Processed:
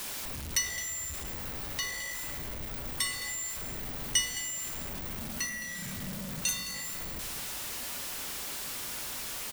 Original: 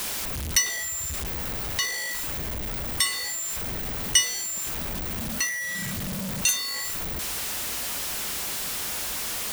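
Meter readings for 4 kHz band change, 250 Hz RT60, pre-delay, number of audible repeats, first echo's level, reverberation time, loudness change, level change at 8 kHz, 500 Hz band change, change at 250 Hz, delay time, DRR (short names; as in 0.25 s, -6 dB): -7.5 dB, 2.8 s, 3 ms, 1, -14.0 dB, 2.2 s, -7.0 dB, -7.0 dB, -7.0 dB, -6.5 dB, 0.214 s, 5.0 dB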